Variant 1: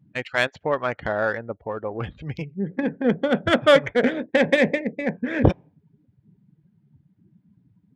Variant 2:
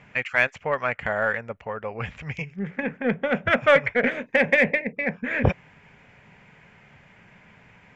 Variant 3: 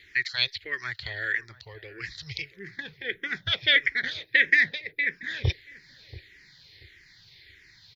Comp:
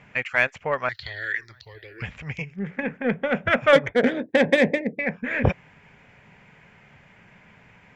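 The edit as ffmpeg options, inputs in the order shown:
-filter_complex "[1:a]asplit=3[s0][s1][s2];[s0]atrim=end=0.892[s3];[2:a]atrim=start=0.888:end=2.022[s4];[s1]atrim=start=2.018:end=3.732[s5];[0:a]atrim=start=3.728:end=4.992[s6];[s2]atrim=start=4.988[s7];[s3][s4]acrossfade=d=0.004:c1=hsin:c2=hsin[s8];[s8][s5]acrossfade=d=0.004:c1=hsin:c2=hsin[s9];[s9][s6]acrossfade=d=0.004:c1=hsin:c2=hsin[s10];[s10][s7]acrossfade=d=0.004:c1=hsin:c2=hsin"

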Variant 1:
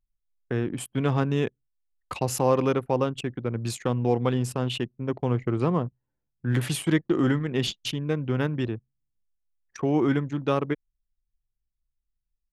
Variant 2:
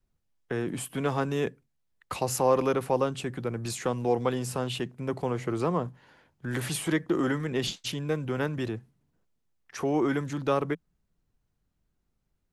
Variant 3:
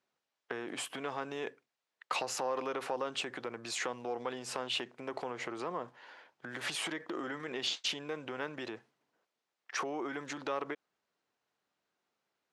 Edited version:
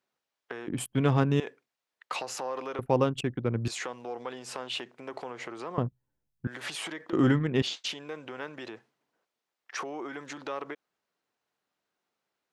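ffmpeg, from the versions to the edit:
-filter_complex "[0:a]asplit=4[s0][s1][s2][s3];[2:a]asplit=5[s4][s5][s6][s7][s8];[s4]atrim=end=0.682[s9];[s0]atrim=start=0.678:end=1.402[s10];[s5]atrim=start=1.398:end=2.792[s11];[s1]atrim=start=2.788:end=3.682[s12];[s6]atrim=start=3.678:end=5.782[s13];[s2]atrim=start=5.778:end=6.472[s14];[s7]atrim=start=6.468:end=7.132[s15];[s3]atrim=start=7.128:end=7.622[s16];[s8]atrim=start=7.618[s17];[s9][s10]acrossfade=d=0.004:c1=hsin:c2=hsin[s18];[s18][s11]acrossfade=d=0.004:c1=hsin:c2=hsin[s19];[s19][s12]acrossfade=d=0.004:c1=hsin:c2=hsin[s20];[s20][s13]acrossfade=d=0.004:c1=hsin:c2=hsin[s21];[s21][s14]acrossfade=d=0.004:c1=hsin:c2=hsin[s22];[s22][s15]acrossfade=d=0.004:c1=hsin:c2=hsin[s23];[s23][s16]acrossfade=d=0.004:c1=hsin:c2=hsin[s24];[s24][s17]acrossfade=d=0.004:c1=hsin:c2=hsin"

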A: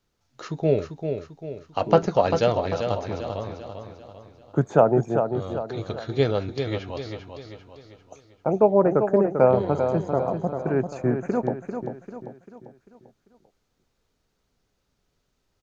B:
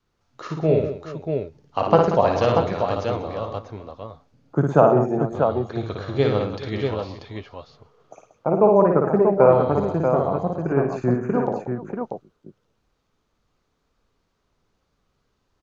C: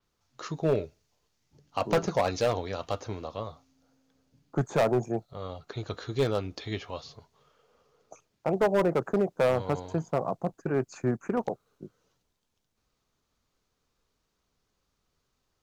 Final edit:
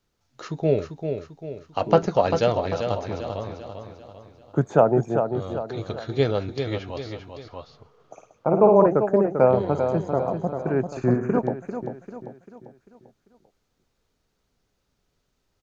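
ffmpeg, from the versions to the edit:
-filter_complex "[1:a]asplit=2[s0][s1];[0:a]asplit=3[s2][s3][s4];[s2]atrim=end=7.482[s5];[s0]atrim=start=7.478:end=8.862[s6];[s3]atrim=start=8.858:end=10.972[s7];[s1]atrim=start=10.968:end=11.392[s8];[s4]atrim=start=11.388[s9];[s5][s6]acrossfade=d=0.004:c1=hsin:c2=hsin[s10];[s10][s7]acrossfade=d=0.004:c1=hsin:c2=hsin[s11];[s11][s8]acrossfade=d=0.004:c1=hsin:c2=hsin[s12];[s12][s9]acrossfade=d=0.004:c1=hsin:c2=hsin"

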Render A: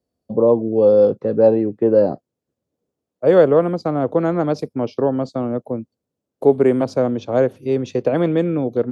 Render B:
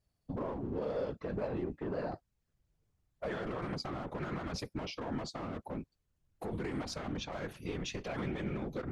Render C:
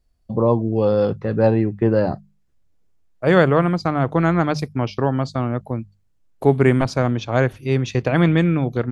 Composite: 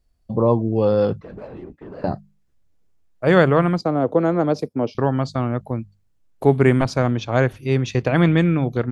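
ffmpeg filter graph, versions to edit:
-filter_complex "[2:a]asplit=3[s0][s1][s2];[s0]atrim=end=1.212[s3];[1:a]atrim=start=1.208:end=2.042[s4];[s1]atrim=start=2.038:end=3.812[s5];[0:a]atrim=start=3.808:end=4.952[s6];[s2]atrim=start=4.948[s7];[s3][s4]acrossfade=d=0.004:c1=hsin:c2=hsin[s8];[s8][s5]acrossfade=d=0.004:c1=hsin:c2=hsin[s9];[s9][s6]acrossfade=d=0.004:c1=hsin:c2=hsin[s10];[s10][s7]acrossfade=d=0.004:c1=hsin:c2=hsin"

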